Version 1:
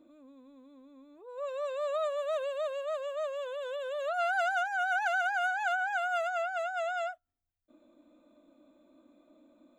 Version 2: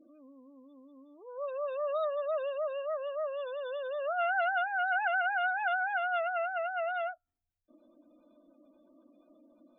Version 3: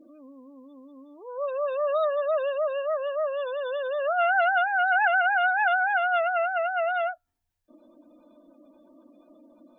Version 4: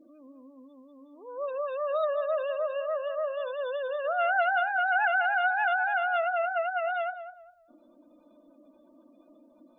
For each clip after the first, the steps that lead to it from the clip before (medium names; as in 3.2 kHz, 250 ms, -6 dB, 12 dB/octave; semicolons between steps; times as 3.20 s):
spectral gate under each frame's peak -25 dB strong
small resonant body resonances 920/1700 Hz, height 9 dB; trim +7 dB
tape echo 201 ms, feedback 35%, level -8.5 dB, low-pass 1.2 kHz; trim -3.5 dB